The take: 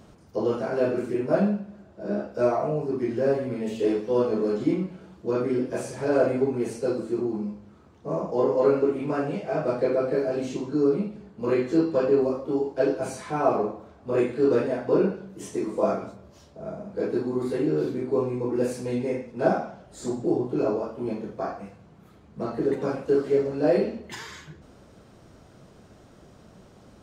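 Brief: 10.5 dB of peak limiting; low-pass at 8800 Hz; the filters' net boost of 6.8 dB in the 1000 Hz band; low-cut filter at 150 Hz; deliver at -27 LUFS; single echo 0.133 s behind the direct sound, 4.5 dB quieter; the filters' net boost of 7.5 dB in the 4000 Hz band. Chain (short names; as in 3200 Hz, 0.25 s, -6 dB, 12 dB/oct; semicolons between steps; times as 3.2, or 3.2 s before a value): HPF 150 Hz; LPF 8800 Hz; bell 1000 Hz +9 dB; bell 4000 Hz +9 dB; limiter -15.5 dBFS; echo 0.133 s -4.5 dB; gain -1.5 dB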